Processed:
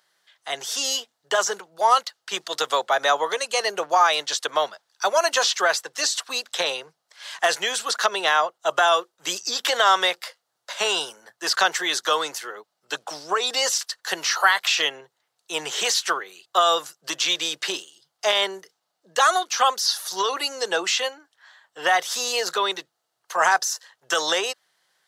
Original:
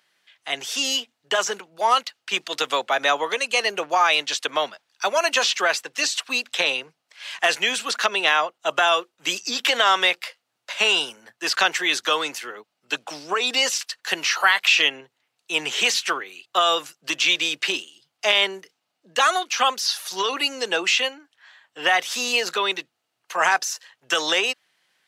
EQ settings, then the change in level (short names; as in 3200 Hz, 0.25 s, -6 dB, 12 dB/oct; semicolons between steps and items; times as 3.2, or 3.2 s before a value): fifteen-band EQ 100 Hz -10 dB, 250 Hz -12 dB, 2500 Hz -11 dB; +2.5 dB